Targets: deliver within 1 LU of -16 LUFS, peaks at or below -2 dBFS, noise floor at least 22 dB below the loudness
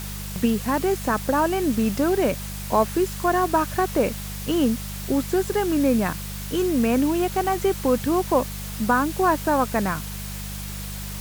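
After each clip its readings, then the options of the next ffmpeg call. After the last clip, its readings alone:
hum 50 Hz; harmonics up to 200 Hz; hum level -31 dBFS; noise floor -33 dBFS; noise floor target -46 dBFS; loudness -23.5 LUFS; peak -7.0 dBFS; loudness target -16.0 LUFS
-> -af "bandreject=f=50:t=h:w=4,bandreject=f=100:t=h:w=4,bandreject=f=150:t=h:w=4,bandreject=f=200:t=h:w=4"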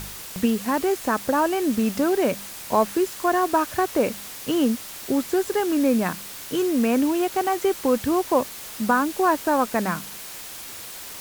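hum none; noise floor -38 dBFS; noise floor target -45 dBFS
-> -af "afftdn=nr=7:nf=-38"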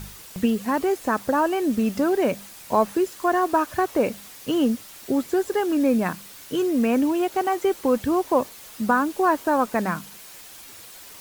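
noise floor -44 dBFS; noise floor target -45 dBFS
-> -af "afftdn=nr=6:nf=-44"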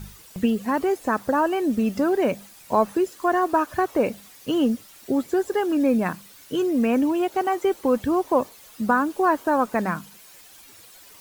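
noise floor -48 dBFS; loudness -23.5 LUFS; peak -7.5 dBFS; loudness target -16.0 LUFS
-> -af "volume=7.5dB,alimiter=limit=-2dB:level=0:latency=1"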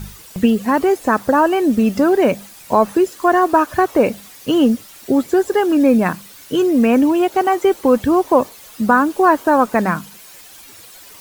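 loudness -16.0 LUFS; peak -2.0 dBFS; noise floor -41 dBFS

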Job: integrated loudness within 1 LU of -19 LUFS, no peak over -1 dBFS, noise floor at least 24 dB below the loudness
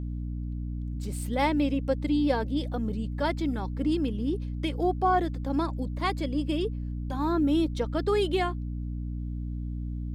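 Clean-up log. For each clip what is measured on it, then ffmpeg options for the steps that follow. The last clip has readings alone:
hum 60 Hz; harmonics up to 300 Hz; hum level -30 dBFS; loudness -29.0 LUFS; peak -12.5 dBFS; loudness target -19.0 LUFS
-> -af "bandreject=f=60:t=h:w=6,bandreject=f=120:t=h:w=6,bandreject=f=180:t=h:w=6,bandreject=f=240:t=h:w=6,bandreject=f=300:t=h:w=6"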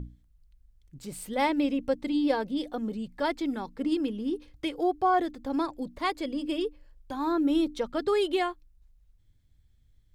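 hum none; loudness -29.5 LUFS; peak -13.5 dBFS; loudness target -19.0 LUFS
-> -af "volume=10.5dB"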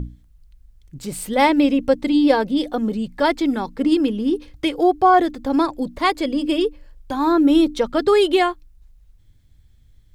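loudness -19.0 LUFS; peak -3.0 dBFS; noise floor -53 dBFS

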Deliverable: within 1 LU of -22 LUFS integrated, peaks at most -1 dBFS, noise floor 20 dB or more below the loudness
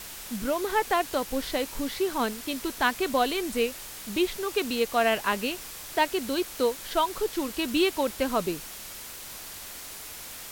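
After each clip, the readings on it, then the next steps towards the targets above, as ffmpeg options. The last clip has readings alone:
noise floor -41 dBFS; noise floor target -49 dBFS; loudness -28.5 LUFS; peak -10.0 dBFS; loudness target -22.0 LUFS
-> -af "afftdn=nr=8:nf=-41"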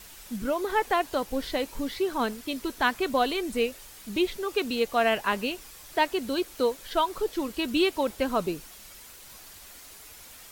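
noise floor -48 dBFS; loudness -28.0 LUFS; peak -10.5 dBFS; loudness target -22.0 LUFS
-> -af "volume=6dB"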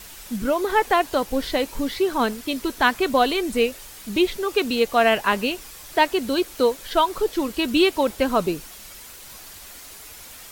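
loudness -22.0 LUFS; peak -4.5 dBFS; noise floor -42 dBFS

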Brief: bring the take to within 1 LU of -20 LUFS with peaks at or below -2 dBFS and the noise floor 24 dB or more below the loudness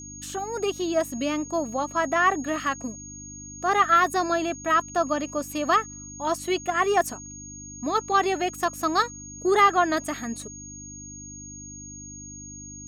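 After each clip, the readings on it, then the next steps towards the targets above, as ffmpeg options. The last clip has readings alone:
hum 50 Hz; harmonics up to 300 Hz; hum level -42 dBFS; steady tone 6600 Hz; tone level -40 dBFS; loudness -24.5 LUFS; peak -7.0 dBFS; loudness target -20.0 LUFS
-> -af "bandreject=f=50:t=h:w=4,bandreject=f=100:t=h:w=4,bandreject=f=150:t=h:w=4,bandreject=f=200:t=h:w=4,bandreject=f=250:t=h:w=4,bandreject=f=300:t=h:w=4"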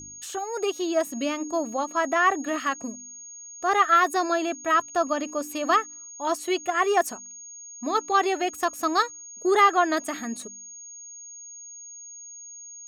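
hum none; steady tone 6600 Hz; tone level -40 dBFS
-> -af "bandreject=f=6.6k:w=30"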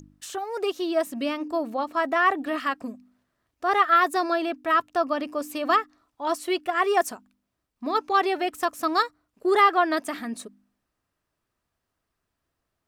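steady tone none; loudness -24.5 LUFS; peak -7.0 dBFS; loudness target -20.0 LUFS
-> -af "volume=4.5dB"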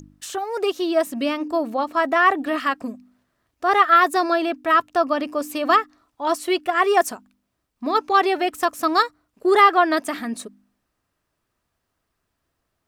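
loudness -20.0 LUFS; peak -2.5 dBFS; noise floor -77 dBFS

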